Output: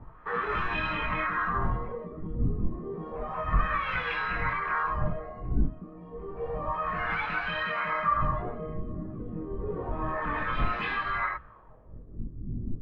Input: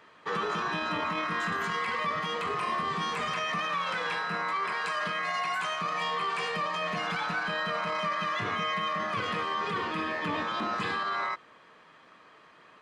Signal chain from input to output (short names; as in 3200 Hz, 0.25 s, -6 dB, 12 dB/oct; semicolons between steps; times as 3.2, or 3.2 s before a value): wind noise 94 Hz -33 dBFS; LFO low-pass sine 0.3 Hz 280–2600 Hz; chorus voices 6, 0.46 Hz, delay 21 ms, depth 4.7 ms